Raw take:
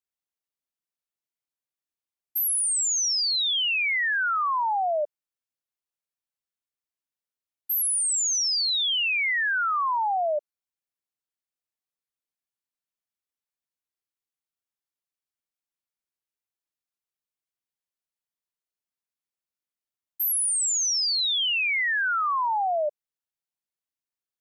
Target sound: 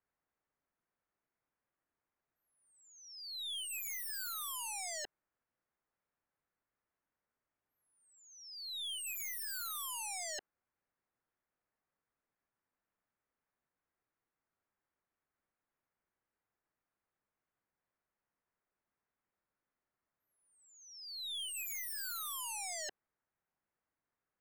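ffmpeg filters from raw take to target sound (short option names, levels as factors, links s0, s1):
-filter_complex "[0:a]lowpass=f=1900:w=0.5412,lowpass=f=1900:w=1.3066,asplit=2[s0][s1];[s1]alimiter=level_in=2:limit=0.0631:level=0:latency=1:release=18,volume=0.501,volume=1.26[s2];[s0][s2]amix=inputs=2:normalize=0,aeval=exprs='0.0158*(abs(mod(val(0)/0.0158+3,4)-2)-1)':c=same,aeval=exprs='(tanh(126*val(0)+0.1)-tanh(0.1))/126':c=same,volume=1.41"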